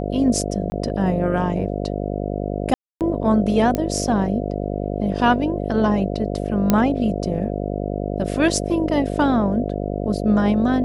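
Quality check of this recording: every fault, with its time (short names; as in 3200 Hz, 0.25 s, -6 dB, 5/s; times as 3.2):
buzz 50 Hz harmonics 14 -25 dBFS
0.7–0.72 gap 20 ms
2.74–3.01 gap 0.268 s
3.75 pop -9 dBFS
6.7 pop -3 dBFS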